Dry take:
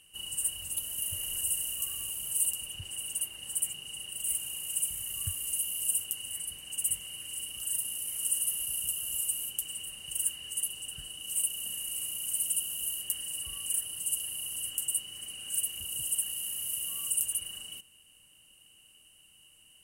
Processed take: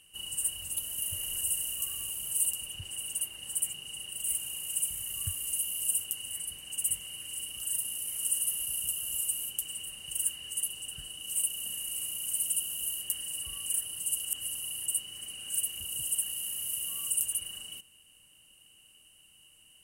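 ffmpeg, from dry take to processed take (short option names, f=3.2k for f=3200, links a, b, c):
-filter_complex "[0:a]asplit=3[a][b][c];[a]atrim=end=14.252[d];[b]atrim=start=14.248:end=14.862,asetpts=PTS-STARTPTS,areverse[e];[c]atrim=start=14.858[f];[d][e]acrossfade=d=0.004:c1=hsin:c2=hsin[g];[g][f]acrossfade=d=0.004:c1=hsin:c2=hsin"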